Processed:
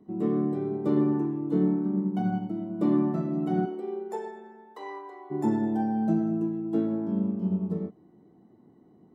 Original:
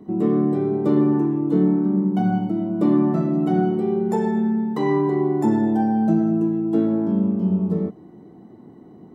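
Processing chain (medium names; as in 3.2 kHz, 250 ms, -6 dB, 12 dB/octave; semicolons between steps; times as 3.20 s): 3.65–5.30 s: high-pass 280 Hz -> 600 Hz 24 dB/octave; upward expansion 1.5:1, over -29 dBFS; trim -5.5 dB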